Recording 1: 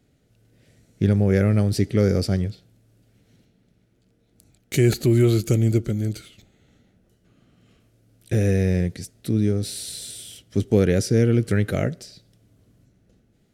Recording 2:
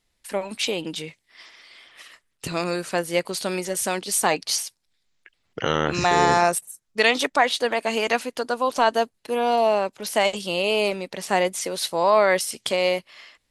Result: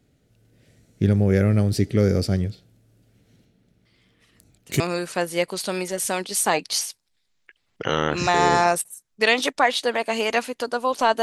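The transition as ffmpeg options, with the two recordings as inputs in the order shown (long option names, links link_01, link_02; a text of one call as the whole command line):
ffmpeg -i cue0.wav -i cue1.wav -filter_complex "[1:a]asplit=2[link_01][link_02];[0:a]apad=whole_dur=11.22,atrim=end=11.22,atrim=end=4.802[link_03];[link_02]atrim=start=2.568:end=8.99[link_04];[link_01]atrim=start=1.62:end=2.57,asetpts=PTS-STARTPTS,volume=-16.5dB,afade=type=in:duration=0.004:curve=hsin,afade=type=out:start_time=0.946:duration=0.004:curve=hsin,adelay=169785S[link_05];[link_03][link_04]acrossfade=duration=0.004:curve1=hsin:curve2=hsin[link_06];[link_06][link_05]amix=inputs=2:normalize=0" out.wav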